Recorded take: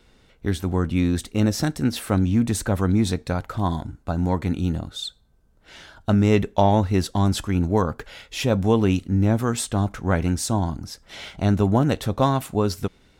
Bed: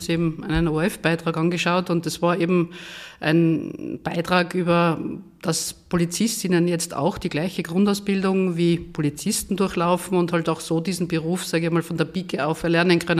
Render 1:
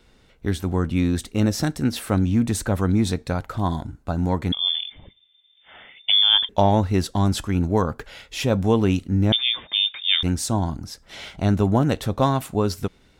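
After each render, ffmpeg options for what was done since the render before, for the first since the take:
-filter_complex "[0:a]asettb=1/sr,asplit=3[a][b][c];[a]atrim=end=4.524[d];[b]atrim=start=4.52:end=6.49,asetpts=PTS-STARTPTS,afade=t=in:d=0.004:c=qsin,afade=t=out:st=1.966:d=0.004:c=qsin,lowpass=f=3.1k:t=q:w=0.5098,lowpass=f=3.1k:t=q:w=0.6013,lowpass=f=3.1k:t=q:w=0.9,lowpass=f=3.1k:t=q:w=2.563,afreqshift=-3600[e];[c]atrim=start=6.486[f];[d][e]acrossfade=d=0.004:c1=hsin:c2=qsin[g];[g][f]acrossfade=d=0.004:c1=qsin:c2=hsin,asettb=1/sr,asplit=3[h][i][j];[h]atrim=end=9.324[k];[i]atrim=start=9.32:end=10.23,asetpts=PTS-STARTPTS,afade=t=in:d=0.004:c=qsin,afade=t=out:st=0.906:d=0.004:c=qsin,lowpass=f=3.1k:t=q:w=0.5098,lowpass=f=3.1k:t=q:w=0.6013,lowpass=f=3.1k:t=q:w=0.9,lowpass=f=3.1k:t=q:w=2.563,afreqshift=-3700[l];[j]atrim=start=10.226[m];[k][l]acrossfade=d=0.004:c1=hsin:c2=qsin[n];[n][m]acrossfade=d=0.004:c1=qsin:c2=hsin"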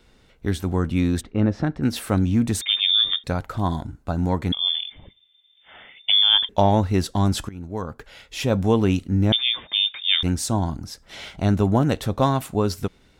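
-filter_complex "[0:a]asplit=3[a][b][c];[a]afade=t=out:st=1.2:d=0.02[d];[b]lowpass=1.9k,afade=t=in:st=1.2:d=0.02,afade=t=out:st=1.82:d=0.02[e];[c]afade=t=in:st=1.82:d=0.02[f];[d][e][f]amix=inputs=3:normalize=0,asettb=1/sr,asplit=3[g][h][i];[g]atrim=end=2.614[j];[h]atrim=start=2.61:end=3.24,asetpts=PTS-STARTPTS,afade=t=in:d=0.004:c=qsin,afade=t=out:st=0.626:d=0.004:c=qsin,lowpass=f=3.1k:t=q:w=0.5098,lowpass=f=3.1k:t=q:w=0.6013,lowpass=f=3.1k:t=q:w=0.9,lowpass=f=3.1k:t=q:w=2.563,afreqshift=-3700[k];[i]atrim=start=3.236[l];[j][k]acrossfade=d=0.004:c1=hsin:c2=qsin[m];[m][l]acrossfade=d=0.004:c1=qsin:c2=hsin,asplit=2[n][o];[n]atrim=end=7.49,asetpts=PTS-STARTPTS,afade=t=out:st=7.486:d=0.004:c=hsin:silence=0.112202[p];[o]atrim=start=7.49,asetpts=PTS-STARTPTS,afade=t=in:d=1.07:silence=0.112202[q];[p][q]concat=n=2:v=0:a=1"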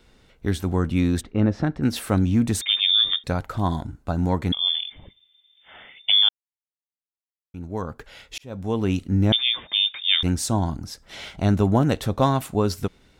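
-filter_complex "[0:a]asplit=4[a][b][c][d];[a]atrim=end=6.29,asetpts=PTS-STARTPTS,afade=t=out:st=6.286:d=0.004:c=hsin[e];[b]atrim=start=6.29:end=7.54,asetpts=PTS-STARTPTS,volume=0[f];[c]atrim=start=7.54:end=8.38,asetpts=PTS-STARTPTS,afade=t=in:d=0.004:c=hsin,afade=t=out:st=0.836:d=0.004:c=hsin[g];[d]atrim=start=8.38,asetpts=PTS-STARTPTS,afade=t=in:d=0.72[h];[e][f][g][h]concat=n=4:v=0:a=1"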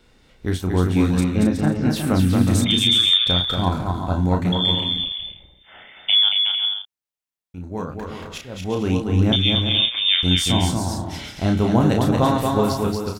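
-filter_complex "[0:a]asplit=2[a][b];[b]adelay=33,volume=-5dB[c];[a][c]amix=inputs=2:normalize=0,aecho=1:1:230|368|450.8|500.5|530.3:0.631|0.398|0.251|0.158|0.1"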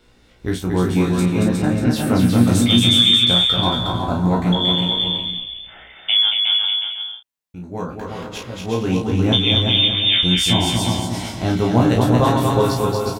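-filter_complex "[0:a]asplit=2[a][b];[b]adelay=17,volume=-3dB[c];[a][c]amix=inputs=2:normalize=0,aecho=1:1:360:0.531"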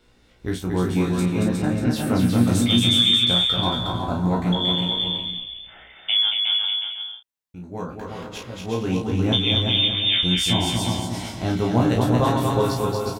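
-af "volume=-4dB"

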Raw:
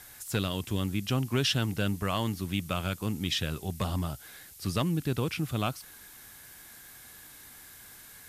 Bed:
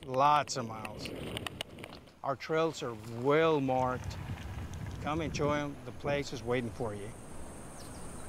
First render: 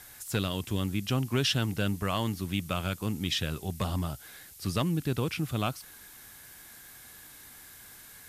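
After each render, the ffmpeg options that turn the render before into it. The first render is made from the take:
-af anull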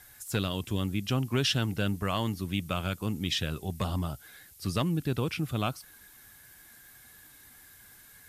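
-af "afftdn=nr=6:nf=-51"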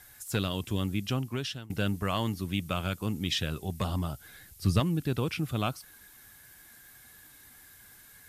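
-filter_complex "[0:a]asettb=1/sr,asplit=3[a][b][c];[a]atrim=end=4.204[d];[b]atrim=start=4.2:end=4.8,asetpts=PTS-STARTPTS,afade=t=in:d=0.004:c=qsin,afade=t=out:st=0.596:d=0.004:c=qsin,lowshelf=f=180:g=10.5[e];[c]atrim=start=4.796[f];[d][e]acrossfade=d=0.004:c1=hsin:c2=qsin[g];[g][f]acrossfade=d=0.004:c1=qsin:c2=hsin,asplit=2[h][i];[h]atrim=end=1.7,asetpts=PTS-STARTPTS,afade=t=out:st=1:d=0.7:silence=0.0749894[j];[i]atrim=start=1.7,asetpts=PTS-STARTPTS,afade=t=in:d=0.004:c=hsin:silence=0.0749894[k];[j][k]concat=n=2:v=0:a=1"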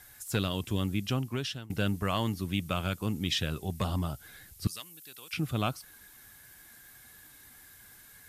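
-filter_complex "[0:a]asettb=1/sr,asplit=3[a][b][c];[a]atrim=end=4.674[d];[b]atrim=start=4.67:end=5.33,asetpts=PTS-STARTPTS,afade=t=in:d=0.004:c=qsin,afade=t=out:st=0.656:d=0.004:c=qsin,aderivative[e];[c]atrim=start=5.326[f];[d][e]acrossfade=d=0.004:c1=hsin:c2=qsin[g];[g][f]acrossfade=d=0.004:c1=qsin:c2=hsin"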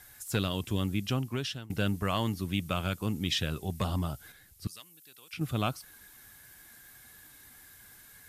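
-filter_complex "[0:a]asplit=3[a][b][c];[a]atrim=end=4.322[d];[b]atrim=start=4.318:end=5.412,asetpts=PTS-STARTPTS,volume=-6dB[e];[c]atrim=start=5.408[f];[d][e]acrossfade=d=0.004:c1=hsin:c2=hsin[g];[g][f]acrossfade=d=0.004:c1=hsin:c2=hsin"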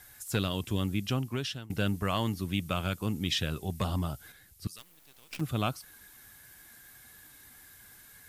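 -filter_complex "[0:a]asettb=1/sr,asplit=3[a][b][c];[a]atrim=end=4.784[d];[b]atrim=start=4.78:end=5.41,asetpts=PTS-STARTPTS,afade=t=in:d=0.004:c=qsin,afade=t=out:st=0.626:d=0.004:c=qsin,acrusher=bits=7:dc=4:mix=0:aa=0.000001[e];[c]atrim=start=5.406[f];[d][e]acrossfade=d=0.004:c1=hsin:c2=qsin[g];[g][f]acrossfade=d=0.004:c1=qsin:c2=hsin"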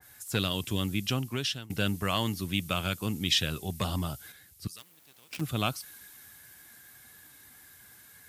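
-af "highpass=67,adynamicequalizer=threshold=0.00501:dfrequency=1900:dqfactor=0.7:tfrequency=1900:tqfactor=0.7:attack=5:release=100:ratio=0.375:range=3:mode=boostabove:tftype=highshelf"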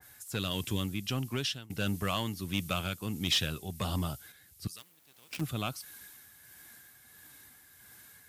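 -af "tremolo=f=1.5:d=0.42,asoftclip=type=tanh:threshold=-20dB"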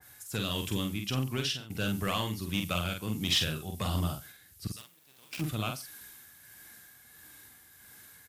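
-filter_complex "[0:a]asplit=2[a][b];[b]adelay=46,volume=-4.5dB[c];[a][c]amix=inputs=2:normalize=0,aecho=1:1:90:0.0841"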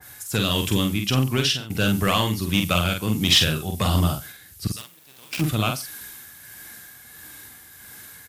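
-af "volume=10.5dB"

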